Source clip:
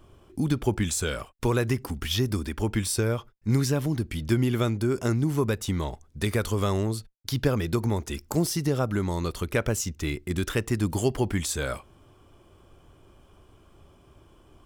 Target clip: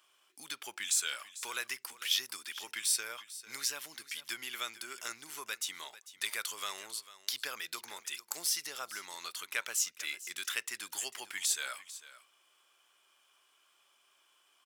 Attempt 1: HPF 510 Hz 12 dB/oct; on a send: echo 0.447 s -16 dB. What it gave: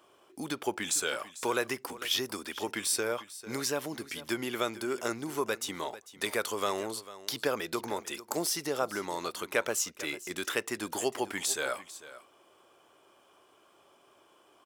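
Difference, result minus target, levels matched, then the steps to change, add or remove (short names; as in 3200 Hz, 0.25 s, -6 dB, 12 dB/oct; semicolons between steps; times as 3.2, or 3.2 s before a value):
500 Hz band +17.0 dB
change: HPF 1900 Hz 12 dB/oct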